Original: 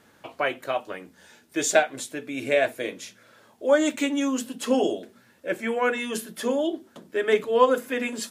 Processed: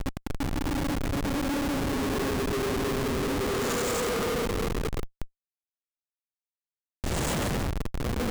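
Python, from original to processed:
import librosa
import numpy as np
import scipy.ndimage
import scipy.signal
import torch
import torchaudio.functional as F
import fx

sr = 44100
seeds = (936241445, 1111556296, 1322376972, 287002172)

p1 = fx.echo_pitch(x, sr, ms=354, semitones=-3, count=2, db_per_echo=-3.0)
p2 = fx.graphic_eq(p1, sr, hz=(250, 4000, 8000), db=(-7, -9, 9))
p3 = fx.paulstretch(p2, sr, seeds[0], factor=15.0, window_s=0.05, from_s=4.14)
p4 = p3 + fx.echo_feedback(p3, sr, ms=343, feedback_pct=19, wet_db=-8.5, dry=0)
y = fx.schmitt(p4, sr, flips_db=-23.5)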